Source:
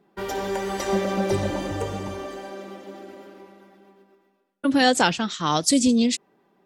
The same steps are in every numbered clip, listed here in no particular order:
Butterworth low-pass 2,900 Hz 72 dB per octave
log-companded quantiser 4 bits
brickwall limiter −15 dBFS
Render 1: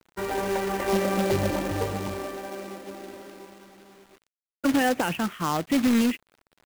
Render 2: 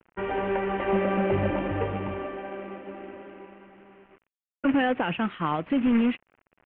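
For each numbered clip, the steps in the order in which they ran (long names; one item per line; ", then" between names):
Butterworth low-pass, then brickwall limiter, then log-companded quantiser
brickwall limiter, then log-companded quantiser, then Butterworth low-pass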